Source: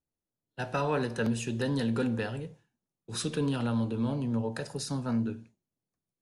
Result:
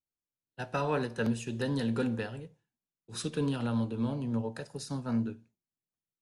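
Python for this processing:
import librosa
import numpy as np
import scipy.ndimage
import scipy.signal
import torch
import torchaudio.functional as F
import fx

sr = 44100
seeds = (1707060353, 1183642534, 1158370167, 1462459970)

y = fx.upward_expand(x, sr, threshold_db=-47.0, expansion=1.5)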